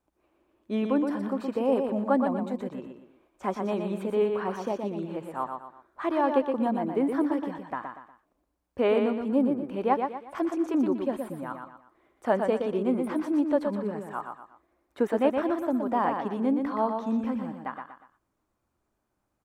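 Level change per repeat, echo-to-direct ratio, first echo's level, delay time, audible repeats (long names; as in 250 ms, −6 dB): −8.5 dB, −5.0 dB, −5.5 dB, 120 ms, 3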